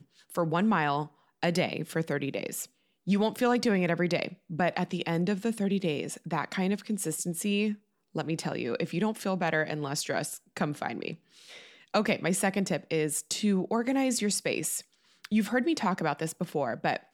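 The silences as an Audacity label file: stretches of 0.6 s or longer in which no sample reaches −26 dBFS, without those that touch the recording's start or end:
11.100000	11.940000	silence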